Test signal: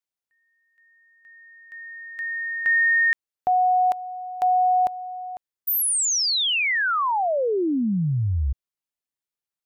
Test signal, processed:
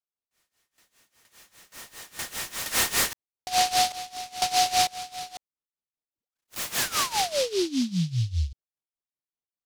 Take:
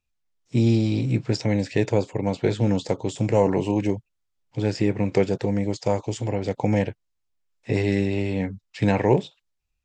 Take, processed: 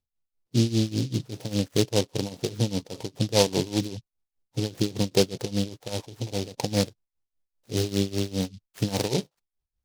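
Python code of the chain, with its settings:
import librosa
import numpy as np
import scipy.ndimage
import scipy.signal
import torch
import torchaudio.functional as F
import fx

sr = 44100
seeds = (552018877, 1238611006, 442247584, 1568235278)

y = np.repeat(scipy.signal.resample_poly(x, 1, 8), 8)[:len(x)]
y = y * (1.0 - 0.88 / 2.0 + 0.88 / 2.0 * np.cos(2.0 * np.pi * 5.0 * (np.arange(len(y)) / sr)))
y = scipy.signal.sosfilt(scipy.signal.butter(4, 2300.0, 'lowpass', fs=sr, output='sos'), y)
y = fx.noise_mod_delay(y, sr, seeds[0], noise_hz=4100.0, depth_ms=0.15)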